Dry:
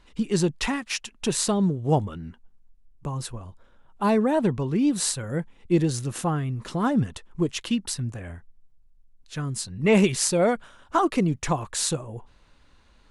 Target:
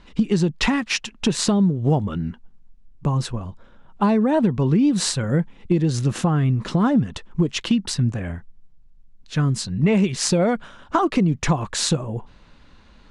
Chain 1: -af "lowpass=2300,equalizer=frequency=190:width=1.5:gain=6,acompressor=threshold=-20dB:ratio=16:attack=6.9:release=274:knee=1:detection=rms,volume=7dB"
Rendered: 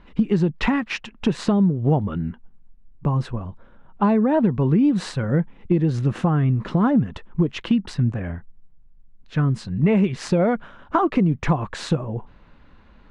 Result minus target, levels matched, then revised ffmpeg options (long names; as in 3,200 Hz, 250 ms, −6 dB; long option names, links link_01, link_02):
8,000 Hz band −15.0 dB
-af "lowpass=6000,equalizer=frequency=190:width=1.5:gain=6,acompressor=threshold=-20dB:ratio=16:attack=6.9:release=274:knee=1:detection=rms,volume=7dB"